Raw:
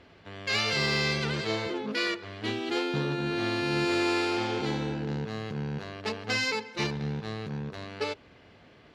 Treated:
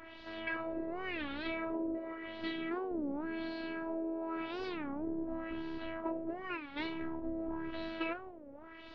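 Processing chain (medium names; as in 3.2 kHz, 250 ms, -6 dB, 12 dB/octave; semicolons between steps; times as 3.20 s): compression 4:1, threshold -33 dBFS, peak gain reduction 8.5 dB; word length cut 8-bit, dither triangular; distance through air 270 m; gain riding within 5 dB 2 s; treble shelf 4.3 kHz -7.5 dB; reverberation RT60 0.55 s, pre-delay 5 ms, DRR 3.5 dB; LFO low-pass sine 0.92 Hz 510–4500 Hz; robot voice 326 Hz; warped record 33 1/3 rpm, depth 250 cents; trim -1 dB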